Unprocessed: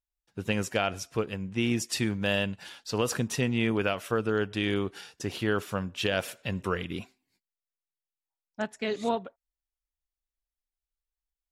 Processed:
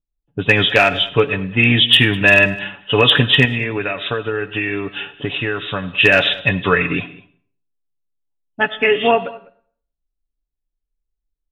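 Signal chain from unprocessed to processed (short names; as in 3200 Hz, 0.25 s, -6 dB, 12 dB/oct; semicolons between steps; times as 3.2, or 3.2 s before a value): nonlinear frequency compression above 2500 Hz 4:1; low-pass opened by the level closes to 310 Hz, open at -27 dBFS; high shelf 2900 Hz +11.5 dB; comb 7 ms, depth 63%; dynamic EQ 1800 Hz, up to +8 dB, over -48 dBFS, Q 6.4; 3.45–5.9 compressor 6:1, threshold -31 dBFS, peak gain reduction 12.5 dB; overloaded stage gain 13.5 dB; echo 0.202 s -22 dB; reverb RT60 0.55 s, pre-delay 40 ms, DRR 16 dB; maximiser +13 dB; gain -1 dB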